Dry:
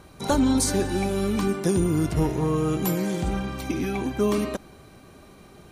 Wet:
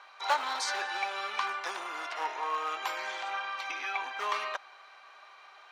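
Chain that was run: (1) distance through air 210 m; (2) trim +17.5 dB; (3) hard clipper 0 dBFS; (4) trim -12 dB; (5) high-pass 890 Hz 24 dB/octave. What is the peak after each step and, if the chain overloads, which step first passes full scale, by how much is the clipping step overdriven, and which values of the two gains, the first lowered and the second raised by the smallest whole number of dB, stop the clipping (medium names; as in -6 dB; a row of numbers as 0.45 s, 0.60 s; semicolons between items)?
-12.0 dBFS, +5.5 dBFS, 0.0 dBFS, -12.0 dBFS, -13.0 dBFS; step 2, 5.5 dB; step 2 +11.5 dB, step 4 -6 dB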